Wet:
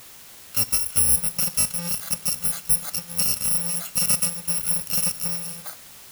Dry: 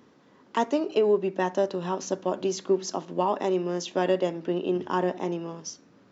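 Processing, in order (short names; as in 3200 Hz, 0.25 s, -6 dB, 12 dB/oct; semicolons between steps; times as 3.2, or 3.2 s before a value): FFT order left unsorted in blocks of 128 samples; in parallel at -9 dB: requantised 6-bit, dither triangular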